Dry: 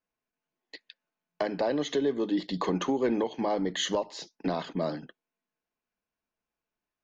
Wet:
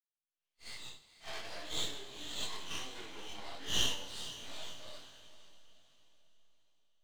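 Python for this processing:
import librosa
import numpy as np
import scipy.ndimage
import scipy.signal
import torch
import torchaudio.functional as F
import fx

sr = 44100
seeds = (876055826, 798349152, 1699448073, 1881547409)

p1 = fx.phase_scramble(x, sr, seeds[0], window_ms=200)
p2 = fx.doppler_pass(p1, sr, speed_mps=18, closest_m=1.1, pass_at_s=1.94)
p3 = fx.recorder_agc(p2, sr, target_db=-21.5, rise_db_per_s=67.0, max_gain_db=30)
p4 = fx.bandpass_q(p3, sr, hz=3400.0, q=2.2)
p5 = np.maximum(p4, 0.0)
p6 = p5 + fx.echo_diffused(p5, sr, ms=496, feedback_pct=40, wet_db=-13.5, dry=0)
p7 = fx.rev_gated(p6, sr, seeds[1], gate_ms=490, shape='falling', drr_db=10.5)
p8 = fx.detune_double(p7, sr, cents=46)
y = p8 * librosa.db_to_amplitude(10.0)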